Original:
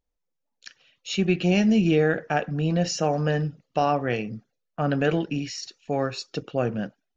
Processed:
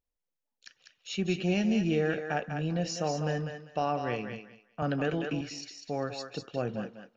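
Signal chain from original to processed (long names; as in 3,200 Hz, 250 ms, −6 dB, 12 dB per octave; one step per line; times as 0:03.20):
feedback echo with a high-pass in the loop 197 ms, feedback 24%, high-pass 520 Hz, level −5.5 dB
0:04.82–0:05.41: multiband upward and downward compressor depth 70%
level −7.5 dB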